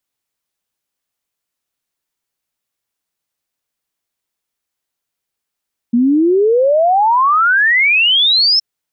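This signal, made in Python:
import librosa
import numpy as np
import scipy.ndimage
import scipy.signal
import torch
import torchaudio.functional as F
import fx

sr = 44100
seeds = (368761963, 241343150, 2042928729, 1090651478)

y = fx.ess(sr, length_s=2.67, from_hz=230.0, to_hz=5400.0, level_db=-8.5)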